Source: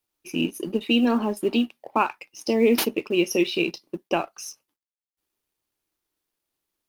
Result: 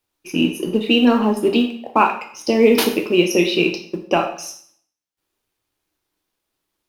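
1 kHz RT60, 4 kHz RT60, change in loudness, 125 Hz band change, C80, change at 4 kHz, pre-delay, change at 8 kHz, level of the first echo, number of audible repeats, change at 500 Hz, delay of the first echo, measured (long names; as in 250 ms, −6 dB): 0.60 s, 0.55 s, +6.5 dB, +8.0 dB, 12.0 dB, +6.5 dB, 5 ms, +4.5 dB, no echo audible, no echo audible, +7.0 dB, no echo audible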